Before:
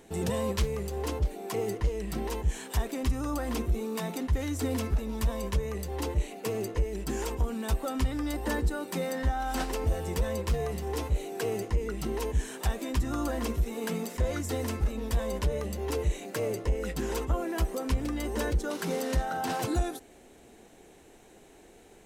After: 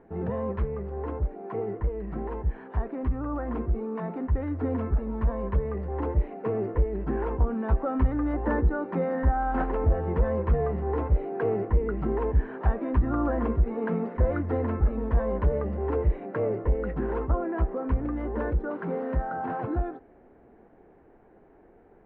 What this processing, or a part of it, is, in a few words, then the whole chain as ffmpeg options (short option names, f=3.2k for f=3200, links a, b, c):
action camera in a waterproof case: -af "lowpass=f=1.6k:w=0.5412,lowpass=f=1.6k:w=1.3066,dynaudnorm=f=820:g=13:m=5dB" -ar 48000 -c:a aac -b:a 96k